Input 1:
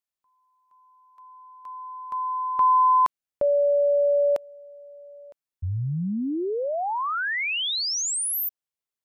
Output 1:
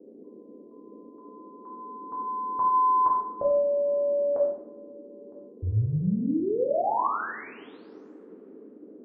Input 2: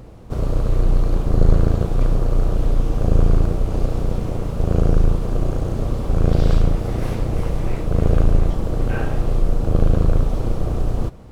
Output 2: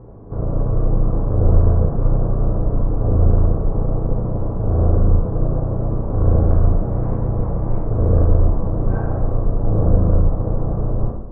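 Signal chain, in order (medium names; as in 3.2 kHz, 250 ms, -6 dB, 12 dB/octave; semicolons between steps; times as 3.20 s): low-pass 1.2 kHz 24 dB/octave; band noise 220–460 Hz -48 dBFS; two-slope reverb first 0.78 s, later 3.2 s, from -25 dB, DRR -4 dB; trim -4 dB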